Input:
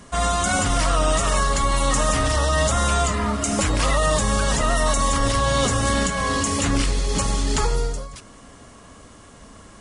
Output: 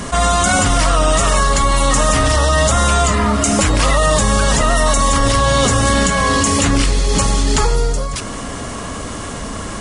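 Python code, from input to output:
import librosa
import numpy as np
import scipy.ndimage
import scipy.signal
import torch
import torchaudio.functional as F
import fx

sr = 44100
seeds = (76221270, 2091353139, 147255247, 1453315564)

y = fx.env_flatten(x, sr, amount_pct=50)
y = y * 10.0 ** (5.5 / 20.0)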